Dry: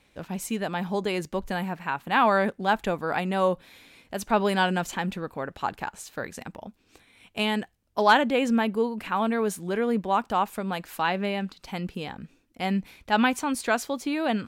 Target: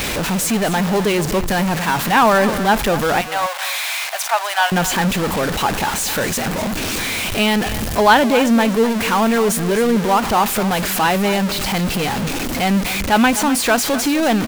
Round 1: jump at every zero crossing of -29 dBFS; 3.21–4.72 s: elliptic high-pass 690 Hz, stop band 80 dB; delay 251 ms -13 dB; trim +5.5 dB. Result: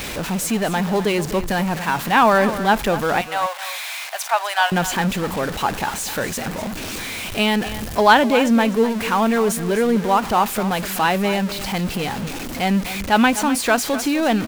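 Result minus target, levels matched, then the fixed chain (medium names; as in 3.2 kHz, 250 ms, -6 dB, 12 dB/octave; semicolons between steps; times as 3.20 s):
jump at every zero crossing: distortion -5 dB
jump at every zero crossing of -22 dBFS; 3.21–4.72 s: elliptic high-pass 690 Hz, stop band 80 dB; delay 251 ms -13 dB; trim +5.5 dB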